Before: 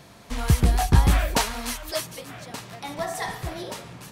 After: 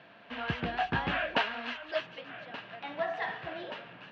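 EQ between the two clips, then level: air absorption 83 m; speaker cabinet 210–3700 Hz, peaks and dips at 650 Hz +5 dB, 1600 Hz +10 dB, 2800 Hz +10 dB; notch 390 Hz, Q 12; -7.0 dB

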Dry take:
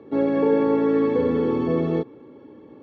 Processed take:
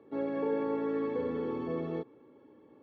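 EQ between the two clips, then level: low shelf 460 Hz -6.5 dB; high shelf 3600 Hz -7 dB; -8.5 dB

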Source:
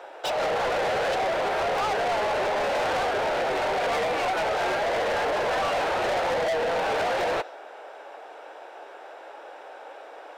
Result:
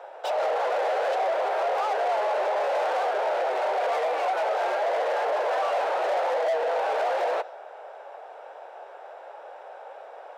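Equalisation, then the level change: HPF 540 Hz 24 dB/oct; tilt shelf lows +8 dB, about 910 Hz; 0.0 dB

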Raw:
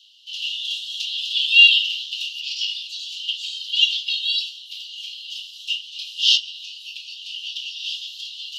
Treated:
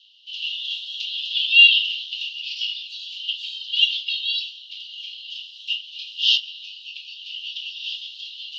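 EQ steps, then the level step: air absorption 230 m; +3.5 dB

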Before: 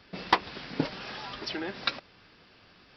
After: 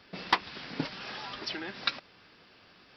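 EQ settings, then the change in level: dynamic EQ 500 Hz, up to -7 dB, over -43 dBFS, Q 0.79; low shelf 110 Hz -8.5 dB; 0.0 dB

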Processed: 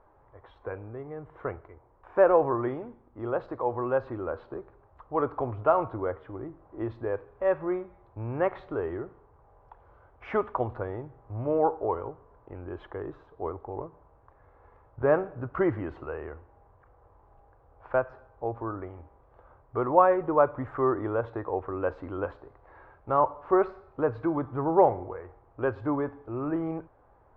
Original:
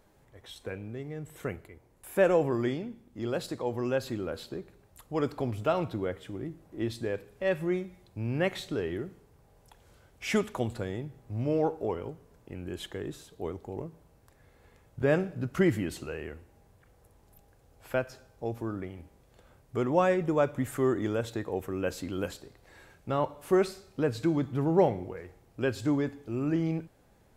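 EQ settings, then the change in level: synth low-pass 1100 Hz, resonance Q 2.5; air absorption 110 m; bell 190 Hz -13.5 dB 0.97 oct; +3.0 dB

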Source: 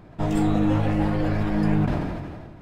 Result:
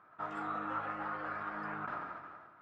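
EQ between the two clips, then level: band-pass 1300 Hz, Q 6.8; +5.0 dB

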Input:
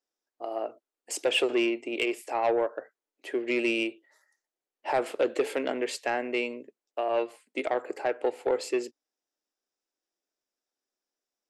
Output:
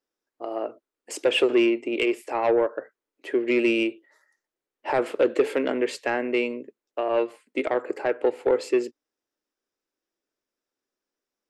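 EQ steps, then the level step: bell 730 Hz -6.5 dB 0.57 oct; high shelf 2800 Hz -10 dB; +7.0 dB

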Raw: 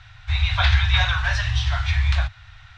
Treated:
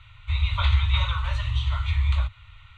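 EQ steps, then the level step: dynamic EQ 2500 Hz, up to -6 dB, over -38 dBFS, Q 1.7; fixed phaser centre 1100 Hz, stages 8; -1.0 dB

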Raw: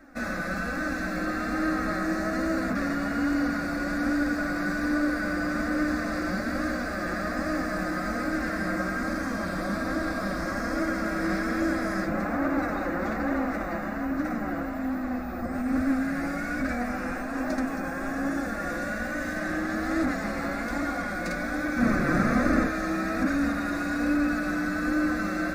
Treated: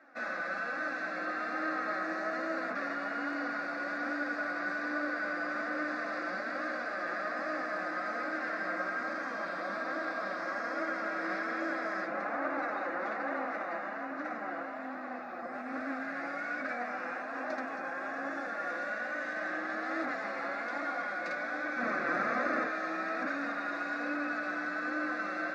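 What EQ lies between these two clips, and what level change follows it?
HPF 560 Hz 12 dB/oct; air absorption 210 m; high shelf 9000 Hz +5 dB; -1.5 dB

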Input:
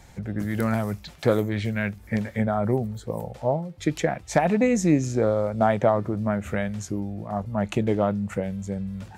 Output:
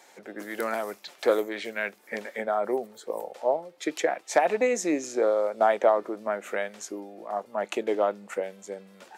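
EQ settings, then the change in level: HPF 350 Hz 24 dB/oct; 0.0 dB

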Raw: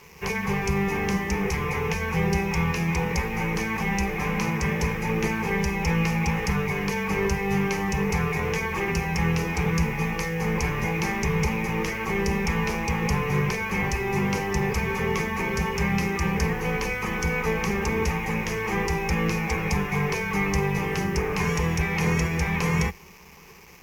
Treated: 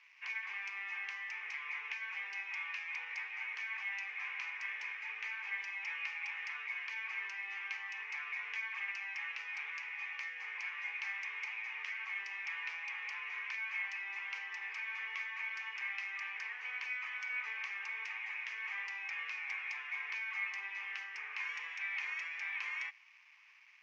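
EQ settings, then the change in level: ladder high-pass 1700 Hz, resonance 25%; tape spacing loss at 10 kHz 43 dB; +6.5 dB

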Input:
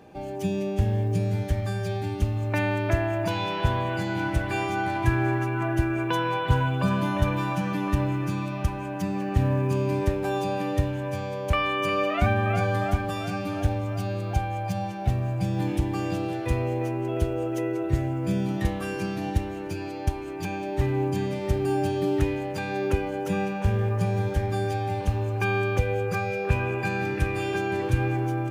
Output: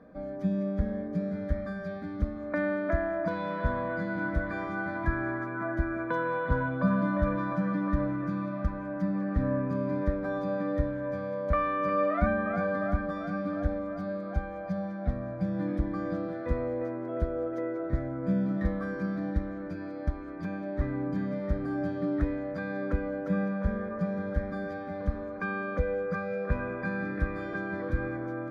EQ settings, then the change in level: air absorption 350 m; fixed phaser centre 560 Hz, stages 8; +1.5 dB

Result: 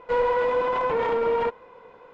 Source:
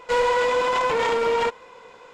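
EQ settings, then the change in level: LPF 1100 Hz 6 dB/oct; air absorption 91 m; 0.0 dB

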